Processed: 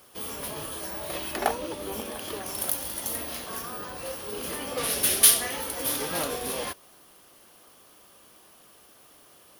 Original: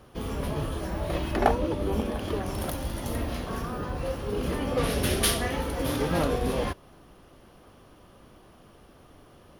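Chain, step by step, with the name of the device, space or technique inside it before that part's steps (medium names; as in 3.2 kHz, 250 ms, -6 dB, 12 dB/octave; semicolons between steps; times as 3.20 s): turntable without a phono preamp (RIAA curve recording; white noise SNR 32 dB); trim -2.5 dB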